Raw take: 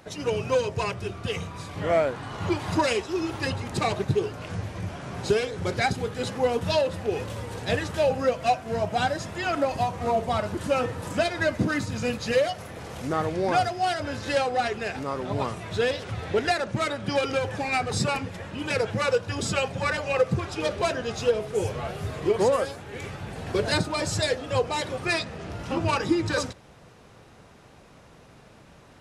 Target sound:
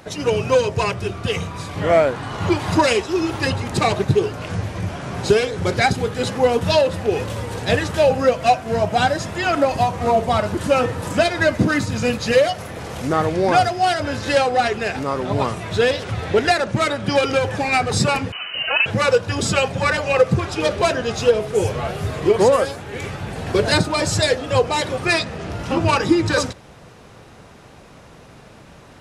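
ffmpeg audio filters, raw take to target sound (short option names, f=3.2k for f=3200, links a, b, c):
-filter_complex "[0:a]asettb=1/sr,asplit=3[a][b][c];[a]atrim=end=18.324[d];[b]atrim=start=18.32:end=18.86,asetpts=PTS-STARTPTS,afade=t=in:d=0.004:c=qsin,afade=t=out:st=0.536:d=0.004:c=qsin,lowpass=f=2.6k:t=q:w=0.5098,lowpass=f=2.6k:t=q:w=0.6013,lowpass=f=2.6k:t=q:w=0.9,lowpass=f=2.6k:t=q:w=2.563,afreqshift=-3100[e];[c]atrim=start=18.856[f];[d][e]acrossfade=d=0.004:c1=hsin:c2=qsin[g];[g][f]acrossfade=d=0.004:c1=qsin:c2=hsin,volume=7.5dB"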